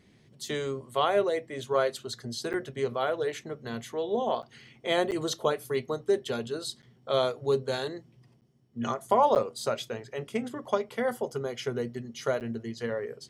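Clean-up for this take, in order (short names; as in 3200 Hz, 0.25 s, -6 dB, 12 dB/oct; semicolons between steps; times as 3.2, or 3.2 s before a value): interpolate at 2.53/4.42/5.11/6.82/8.41/9.35/12.4, 8.7 ms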